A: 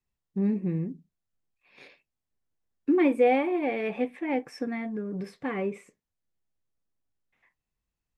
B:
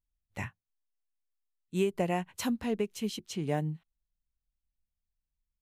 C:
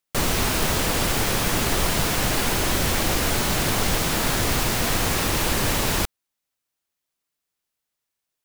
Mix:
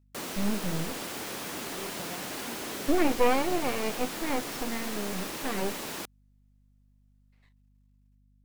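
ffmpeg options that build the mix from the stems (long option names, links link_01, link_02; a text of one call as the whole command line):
ffmpeg -i stem1.wav -i stem2.wav -i stem3.wav -filter_complex "[0:a]aeval=exprs='max(val(0),0)':channel_layout=same,volume=2dB[link_01];[1:a]volume=-15.5dB[link_02];[2:a]highpass=220,equalizer=frequency=280:width=1.5:gain=3,volume=-13.5dB[link_03];[link_01][link_02][link_03]amix=inputs=3:normalize=0,aeval=exprs='val(0)+0.000794*(sin(2*PI*50*n/s)+sin(2*PI*2*50*n/s)/2+sin(2*PI*3*50*n/s)/3+sin(2*PI*4*50*n/s)/4+sin(2*PI*5*50*n/s)/5)':channel_layout=same" out.wav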